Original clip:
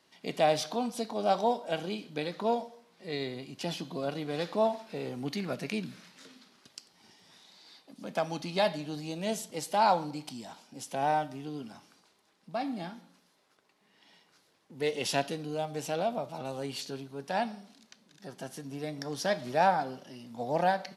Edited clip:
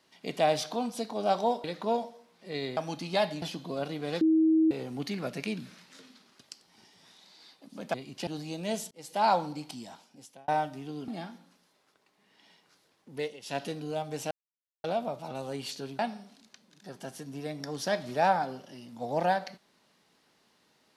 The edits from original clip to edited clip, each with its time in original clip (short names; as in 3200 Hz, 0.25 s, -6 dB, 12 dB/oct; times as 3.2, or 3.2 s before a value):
1.64–2.22 cut
3.35–3.68 swap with 8.2–8.85
4.47–4.97 bleep 319 Hz -19.5 dBFS
9.49–9.83 fade in
10.38–11.06 fade out
11.66–12.71 cut
14.76–15.31 dip -17.5 dB, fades 0.26 s
15.94 insert silence 0.53 s
17.09–17.37 cut